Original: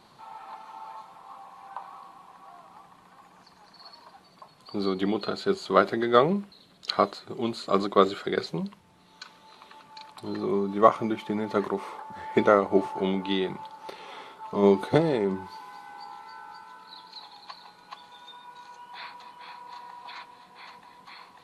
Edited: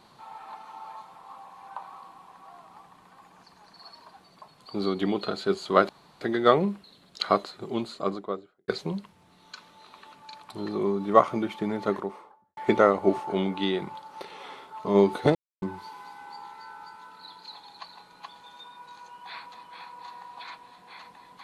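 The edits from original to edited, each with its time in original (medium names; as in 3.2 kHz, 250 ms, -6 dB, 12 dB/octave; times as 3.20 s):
5.89 s: insert room tone 0.32 s
7.30–8.36 s: studio fade out
11.42–12.25 s: studio fade out
15.03–15.30 s: mute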